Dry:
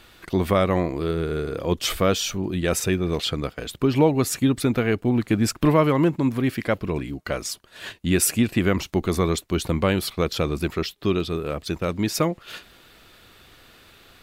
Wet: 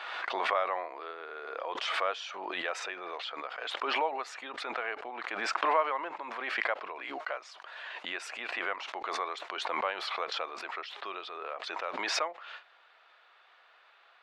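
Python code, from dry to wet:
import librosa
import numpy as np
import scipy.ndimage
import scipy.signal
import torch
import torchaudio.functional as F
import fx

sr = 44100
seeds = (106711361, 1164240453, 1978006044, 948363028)

y = scipy.signal.sosfilt(scipy.signal.butter(4, 740.0, 'highpass', fs=sr, output='sos'), x)
y = fx.spacing_loss(y, sr, db_at_10k=40)
y = fx.pre_swell(y, sr, db_per_s=28.0)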